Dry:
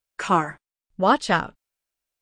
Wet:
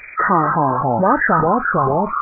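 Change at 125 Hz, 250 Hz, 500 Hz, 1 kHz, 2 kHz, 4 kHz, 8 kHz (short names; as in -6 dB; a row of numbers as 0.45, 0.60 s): +11.5 dB, +8.0 dB, +9.0 dB, +8.5 dB, +9.0 dB, under -35 dB, under -35 dB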